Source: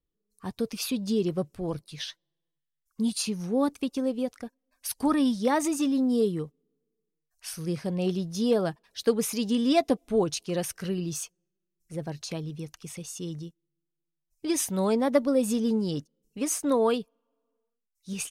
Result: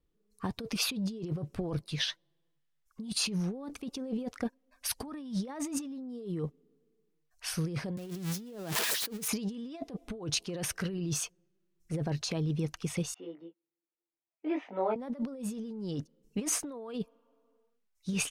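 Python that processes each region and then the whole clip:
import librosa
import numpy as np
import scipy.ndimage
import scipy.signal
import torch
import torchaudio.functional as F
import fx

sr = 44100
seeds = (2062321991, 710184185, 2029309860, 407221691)

y = fx.chain(x, sr, fx.crossing_spikes(level_db=-18.0),
    fx.peak_eq(hz=270.0, db=5.0, octaves=1.2),
    fx.band_squash(depth_pct=40), at=(7.97, 9.28))
y = fx.chain(y, sr, fx.cabinet(low_hz=350.0, low_slope=24, high_hz=2100.0, hz=(390.0, 550.0, 1100.0, 1600.0), db=(-9, -3, -9, -8)),
    fx.detune_double(cents=22), at=(13.14, 14.96))
y = fx.high_shelf(y, sr, hz=5300.0, db=-11.0)
y = fx.over_compress(y, sr, threshold_db=-36.0, ratio=-1.0)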